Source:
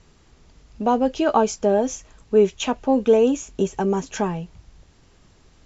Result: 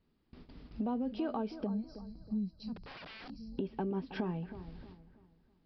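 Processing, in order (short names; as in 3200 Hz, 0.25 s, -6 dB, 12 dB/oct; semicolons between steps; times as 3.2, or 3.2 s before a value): 1.67–3.58 spectral gain 220–3900 Hz -29 dB; gate with hold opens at -41 dBFS; bell 250 Hz +11 dB 1.1 oct; limiter -10.5 dBFS, peak gain reduction 7.5 dB; compressor 3:1, threshold -35 dBFS, peak gain reduction 15.5 dB; on a send: analogue delay 0.32 s, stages 4096, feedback 35%, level -12.5 dB; 2.76–3.3 on the sum: wrapped overs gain 40.5 dB; downsampling 11025 Hz; gain -3 dB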